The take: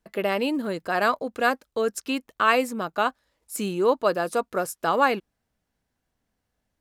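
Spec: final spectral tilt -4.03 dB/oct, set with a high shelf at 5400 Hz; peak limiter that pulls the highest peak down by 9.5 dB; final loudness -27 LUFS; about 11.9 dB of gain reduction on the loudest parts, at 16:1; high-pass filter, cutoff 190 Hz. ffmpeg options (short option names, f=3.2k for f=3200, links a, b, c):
-af "highpass=190,highshelf=f=5.4k:g=-5.5,acompressor=threshold=-27dB:ratio=16,volume=8.5dB,alimiter=limit=-15.5dB:level=0:latency=1"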